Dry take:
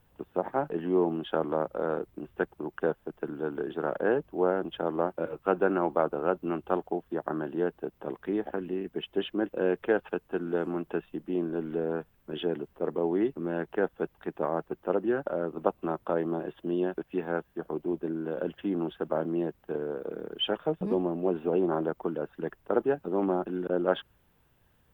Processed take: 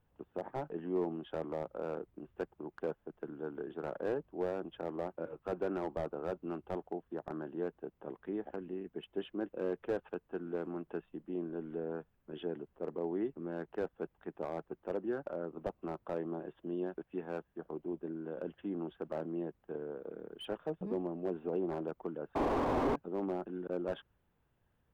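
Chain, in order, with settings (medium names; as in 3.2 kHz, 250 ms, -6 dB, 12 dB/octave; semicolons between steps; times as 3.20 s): treble shelf 3.1 kHz -10 dB; painted sound noise, 22.35–22.96 s, 230–1200 Hz -19 dBFS; slew-rate limiter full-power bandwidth 51 Hz; trim -8.5 dB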